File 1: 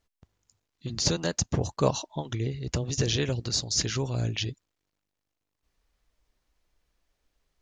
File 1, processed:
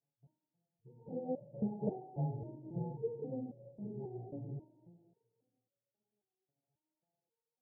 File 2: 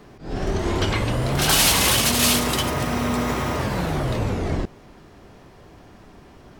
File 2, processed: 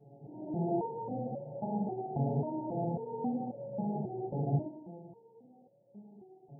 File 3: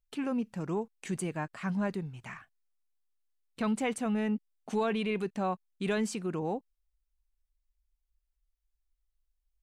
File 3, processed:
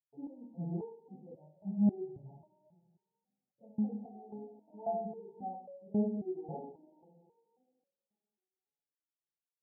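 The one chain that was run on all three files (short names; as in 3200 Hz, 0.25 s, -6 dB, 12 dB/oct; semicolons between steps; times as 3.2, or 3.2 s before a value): two-slope reverb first 0.47 s, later 2.4 s, from -18 dB, DRR -9.5 dB; FFT band-pass 110–930 Hz; stepped resonator 3.7 Hz 140–560 Hz; gain -4.5 dB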